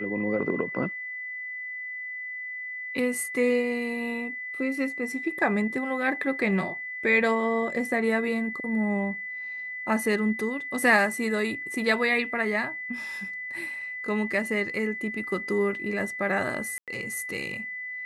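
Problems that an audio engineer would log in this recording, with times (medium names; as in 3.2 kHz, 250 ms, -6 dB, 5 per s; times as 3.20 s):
whine 2 kHz -33 dBFS
16.78–16.88 s: dropout 97 ms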